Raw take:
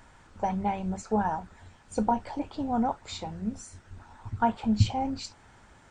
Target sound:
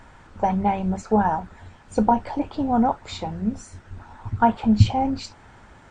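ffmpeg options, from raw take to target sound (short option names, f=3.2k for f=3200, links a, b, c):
-af "highshelf=f=4.7k:g=-9.5,volume=7.5dB"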